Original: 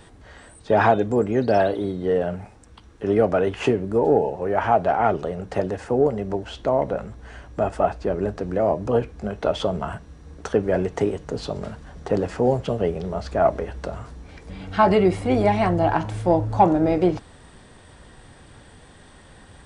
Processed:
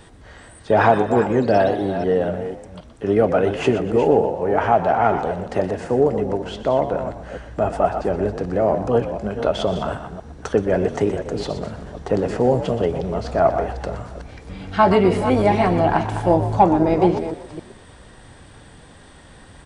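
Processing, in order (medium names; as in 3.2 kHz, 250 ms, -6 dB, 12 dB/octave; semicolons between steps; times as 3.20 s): chunks repeated in reverse 255 ms, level -10 dB; frequency-shifting echo 122 ms, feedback 36%, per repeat +53 Hz, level -12 dB; trim +2 dB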